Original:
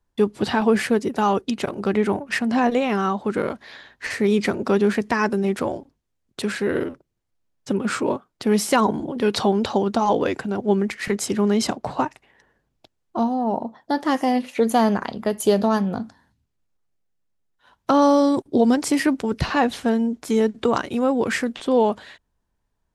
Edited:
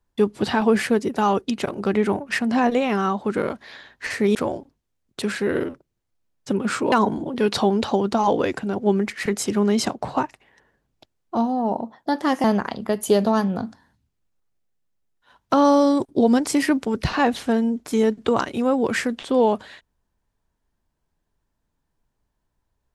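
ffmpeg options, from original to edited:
ffmpeg -i in.wav -filter_complex "[0:a]asplit=4[link_01][link_02][link_03][link_04];[link_01]atrim=end=4.352[link_05];[link_02]atrim=start=5.548:end=8.122[link_06];[link_03]atrim=start=8.738:end=14.262[link_07];[link_04]atrim=start=14.808[link_08];[link_05][link_06]acrossfade=duration=0.004:curve1=hsin:curve2=hsin[link_09];[link_09][link_07]acrossfade=duration=0.004:curve1=hsin:curve2=hsin[link_10];[link_10][link_08]acrossfade=duration=0.004:curve1=hsin:curve2=hsin" out.wav

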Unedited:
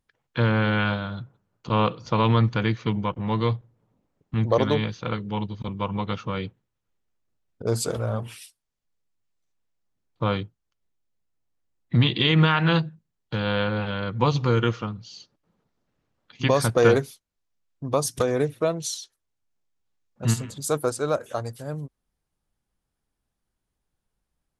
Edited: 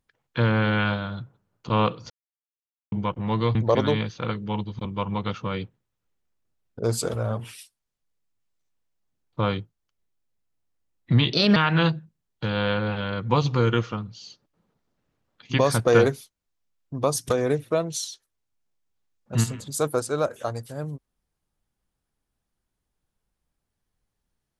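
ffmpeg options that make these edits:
ffmpeg -i in.wav -filter_complex "[0:a]asplit=6[link_01][link_02][link_03][link_04][link_05][link_06];[link_01]atrim=end=2.1,asetpts=PTS-STARTPTS,afade=type=out:start_time=2.096:duration=0.004:curve=hsin[link_07];[link_02]atrim=start=2.1:end=2.92,asetpts=PTS-STARTPTS,volume=0[link_08];[link_03]atrim=start=2.92:end=3.552,asetpts=PTS-STARTPTS,afade=type=in:duration=0.004:curve=hsin[link_09];[link_04]atrim=start=4.378:end=12.164[link_10];[link_05]atrim=start=12.16:end=12.46,asetpts=PTS-STARTPTS,asetrate=57330,aresample=44100[link_11];[link_06]atrim=start=12.456[link_12];[link_07][link_08][link_09]concat=n=3:v=0:a=1[link_13];[link_13][link_10]acrossfade=duration=0.004:curve1=hsin:curve2=hsin[link_14];[link_14][link_11]acrossfade=duration=0.004:curve1=hsin:curve2=hsin[link_15];[link_15][link_12]acrossfade=duration=0.004:curve1=hsin:curve2=hsin" out.wav

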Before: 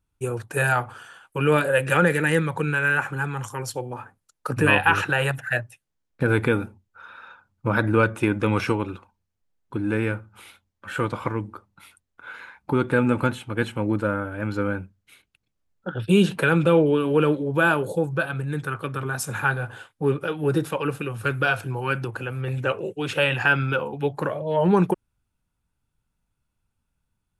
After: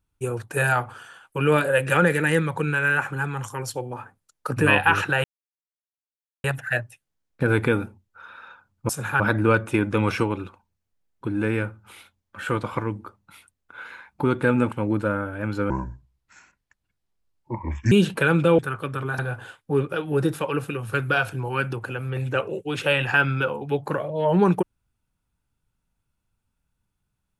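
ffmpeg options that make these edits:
ffmpeg -i in.wav -filter_complex "[0:a]asplit=9[link_01][link_02][link_03][link_04][link_05][link_06][link_07][link_08][link_09];[link_01]atrim=end=5.24,asetpts=PTS-STARTPTS,afade=type=out:start_time=5.236:duration=0.004:curve=hsin,apad=pad_dur=1.2[link_10];[link_02]atrim=start=5.24:end=7.692,asetpts=PTS-STARTPTS,afade=type=in:duration=0.004:curve=hsin[link_11];[link_03]atrim=start=19.188:end=19.502[link_12];[link_04]atrim=start=7.688:end=13.212[link_13];[link_05]atrim=start=13.708:end=14.694[link_14];[link_06]atrim=start=14.69:end=16.13,asetpts=PTS-STARTPTS,asetrate=28665,aresample=44100,atrim=end_sample=97698,asetpts=PTS-STARTPTS[link_15];[link_07]atrim=start=16.126:end=16.802[link_16];[link_08]atrim=start=18.588:end=19.192[link_17];[link_09]atrim=start=19.498[link_18];[link_10][link_11]concat=n=2:v=0:a=1[link_19];[link_19][link_12]acrossfade=duration=0.004:curve1=hsin:curve2=hsin[link_20];[link_20][link_13]acrossfade=duration=0.004:curve1=hsin:curve2=hsin[link_21];[link_21][link_14]acrossfade=duration=0.004:curve1=hsin:curve2=hsin[link_22];[link_22][link_15]acrossfade=duration=0.004:curve1=hsin:curve2=hsin[link_23];[link_23][link_16]acrossfade=duration=0.004:curve1=hsin:curve2=hsin[link_24];[link_24][link_17]acrossfade=duration=0.004:curve1=hsin:curve2=hsin[link_25];[link_25][link_18]acrossfade=duration=0.004:curve1=hsin:curve2=hsin" out.wav

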